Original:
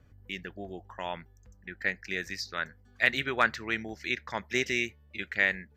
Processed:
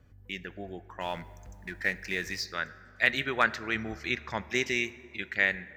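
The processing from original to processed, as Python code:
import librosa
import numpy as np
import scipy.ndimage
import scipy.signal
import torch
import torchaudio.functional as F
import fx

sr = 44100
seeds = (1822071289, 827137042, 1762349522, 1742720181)

y = fx.law_mismatch(x, sr, coded='mu', at=(1.0, 2.44), fade=0.02)
y = fx.low_shelf(y, sr, hz=160.0, db=9.0, at=(3.75, 4.5))
y = fx.rev_plate(y, sr, seeds[0], rt60_s=2.4, hf_ratio=0.45, predelay_ms=0, drr_db=16.0)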